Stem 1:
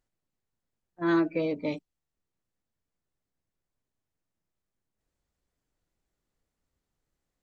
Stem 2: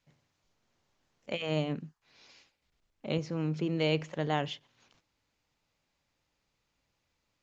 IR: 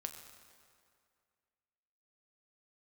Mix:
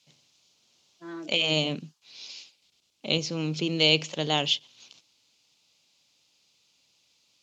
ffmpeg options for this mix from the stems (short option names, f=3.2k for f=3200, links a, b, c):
-filter_complex "[0:a]agate=range=-33dB:threshold=-39dB:ratio=3:detection=peak,volume=-9dB[a];[1:a]aemphasis=mode=reproduction:type=75fm,aexciter=amount=13.8:drive=3.1:freq=2.7k,volume=2.5dB,asplit=2[b][c];[c]apad=whole_len=327611[d];[a][d]sidechaingate=range=-6dB:threshold=-60dB:ratio=16:detection=peak[e];[e][b]amix=inputs=2:normalize=0,highpass=140"